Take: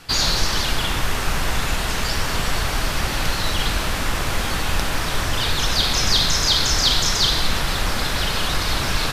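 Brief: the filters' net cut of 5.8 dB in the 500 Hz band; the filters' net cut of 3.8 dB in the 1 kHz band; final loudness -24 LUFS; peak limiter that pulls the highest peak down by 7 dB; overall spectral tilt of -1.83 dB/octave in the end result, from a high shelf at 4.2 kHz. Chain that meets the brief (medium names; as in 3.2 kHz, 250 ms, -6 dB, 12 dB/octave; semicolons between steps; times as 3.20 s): peaking EQ 500 Hz -6.5 dB; peaking EQ 1 kHz -4 dB; treble shelf 4.2 kHz +9 dB; trim -6 dB; peak limiter -13.5 dBFS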